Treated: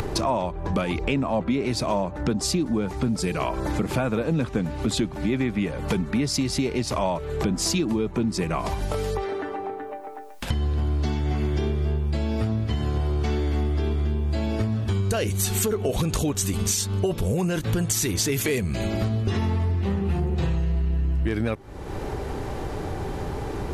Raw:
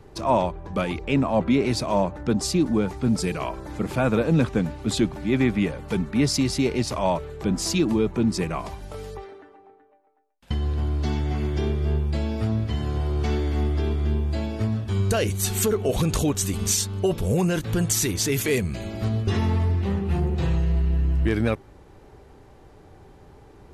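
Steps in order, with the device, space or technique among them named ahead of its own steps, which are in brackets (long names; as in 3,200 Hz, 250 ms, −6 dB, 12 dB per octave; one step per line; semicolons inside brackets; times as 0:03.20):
upward and downward compression (upward compression, threshold −23 dBFS; downward compressor, threshold −27 dBFS, peak gain reduction 11.5 dB)
level +6 dB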